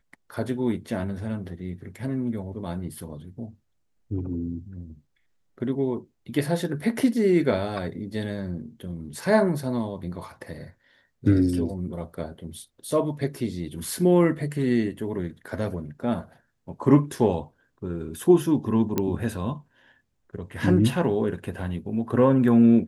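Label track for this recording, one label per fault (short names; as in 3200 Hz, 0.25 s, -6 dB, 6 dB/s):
18.980000	18.980000	pop -10 dBFS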